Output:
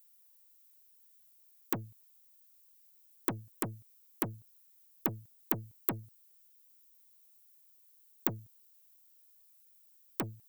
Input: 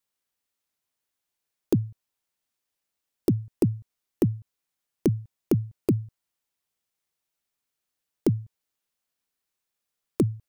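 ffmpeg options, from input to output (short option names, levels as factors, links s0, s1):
-af "aeval=exprs='(tanh(20*val(0)+0.4)-tanh(0.4))/20':c=same,aemphasis=mode=production:type=riaa"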